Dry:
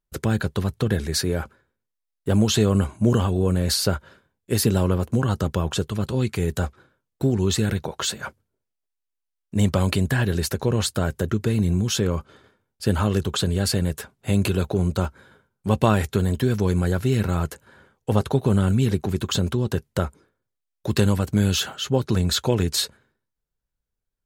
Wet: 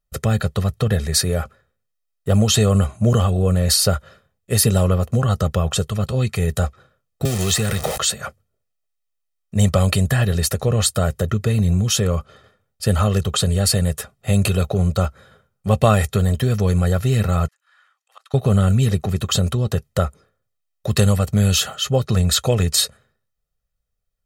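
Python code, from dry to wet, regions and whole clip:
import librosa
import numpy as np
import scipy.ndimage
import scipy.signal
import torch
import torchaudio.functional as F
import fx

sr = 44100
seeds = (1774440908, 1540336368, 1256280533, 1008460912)

y = fx.chain(x, sr, fx.zero_step(step_db=-27.5),
    fx.low_shelf(hz=320.0, db=-6.0),
    fx.band_squash(depth_pct=70), at=(7.25, 7.98))
y = fx.chain(y, sr, fx.highpass(hz=1100.0, slope=24),
    fx.high_shelf(hz=9800.0, db=-10.5),
    fx.auto_swell(attack_ms=407.0), at=(17.48, 18.34))
y = fx.dynamic_eq(y, sr, hz=9400.0, q=1.1, threshold_db=-44.0, ratio=4.0, max_db=6)
y = y + 0.67 * np.pad(y, (int(1.6 * sr / 1000.0), 0))[:len(y)]
y = y * 10.0 ** (2.0 / 20.0)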